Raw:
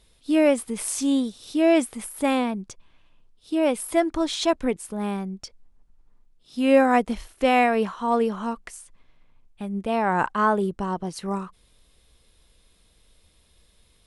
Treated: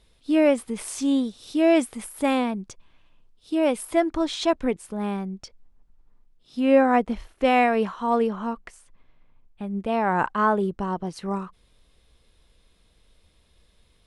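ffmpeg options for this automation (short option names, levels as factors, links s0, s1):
-af "asetnsamples=n=441:p=0,asendcmd='1.38 lowpass f 9000;3.85 lowpass f 4600;6.6 lowpass f 2200;7.44 lowpass f 5100;8.27 lowpass f 2400;9.71 lowpass f 4100',lowpass=f=4600:p=1"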